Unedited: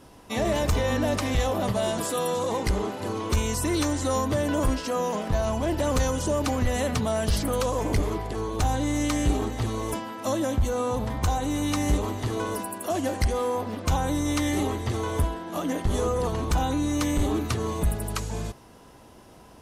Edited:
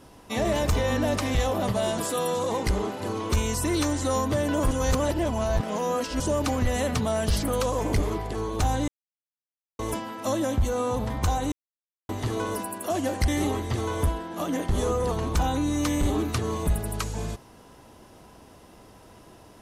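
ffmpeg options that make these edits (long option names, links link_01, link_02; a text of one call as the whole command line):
ffmpeg -i in.wav -filter_complex "[0:a]asplit=8[link_01][link_02][link_03][link_04][link_05][link_06][link_07][link_08];[link_01]atrim=end=4.712[link_09];[link_02]atrim=start=4.708:end=6.202,asetpts=PTS-STARTPTS,areverse[link_10];[link_03]atrim=start=6.198:end=8.88,asetpts=PTS-STARTPTS,afade=type=out:start_time=2.678:duration=0.004:curve=hsin[link_11];[link_04]atrim=start=8.88:end=9.79,asetpts=PTS-STARTPTS,volume=0[link_12];[link_05]atrim=start=9.79:end=11.52,asetpts=PTS-STARTPTS,afade=type=in:duration=0.004:curve=hsin,afade=type=out:start_time=1.726:duration=0.004:curve=hsin[link_13];[link_06]atrim=start=11.52:end=12.09,asetpts=PTS-STARTPTS,volume=0[link_14];[link_07]atrim=start=12.09:end=13.282,asetpts=PTS-STARTPTS,afade=type=in:duration=0.004:curve=hsin[link_15];[link_08]atrim=start=14.438[link_16];[link_09][link_10]acrossfade=duration=0.004:curve1=hsin:curve2=hsin[link_17];[link_11][link_12][link_13][link_14][link_15]concat=n=5:v=0:a=1[link_18];[link_17][link_18]acrossfade=duration=0.004:curve1=hsin:curve2=hsin[link_19];[link_19][link_16]acrossfade=duration=0.004:curve1=hsin:curve2=hsin" out.wav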